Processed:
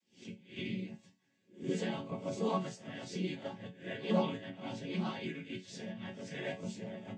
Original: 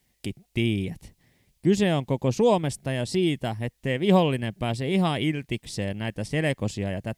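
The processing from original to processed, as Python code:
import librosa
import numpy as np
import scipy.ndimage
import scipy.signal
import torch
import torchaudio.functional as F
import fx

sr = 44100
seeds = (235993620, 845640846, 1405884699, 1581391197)

y = fx.spec_swells(x, sr, rise_s=0.35)
y = fx.noise_vocoder(y, sr, seeds[0], bands=16)
y = fx.resonator_bank(y, sr, root=54, chord='minor', decay_s=0.23)
y = y * librosa.db_to_amplitude(1.0)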